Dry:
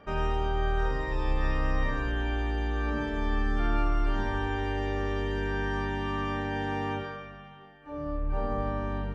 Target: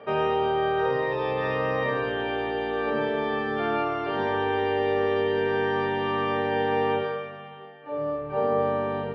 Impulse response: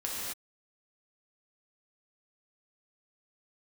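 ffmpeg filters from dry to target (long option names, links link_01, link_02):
-af "highpass=frequency=130:width=0.5412,highpass=frequency=130:width=1.3066,equalizer=frequency=180:width_type=q:width=4:gain=-9,equalizer=frequency=300:width_type=q:width=4:gain=-7,equalizer=frequency=460:width_type=q:width=4:gain=9,equalizer=frequency=660:width_type=q:width=4:gain=3,equalizer=frequency=1500:width_type=q:width=4:gain=-4,lowpass=frequency=4000:width=0.5412,lowpass=frequency=4000:width=1.3066,volume=6.5dB"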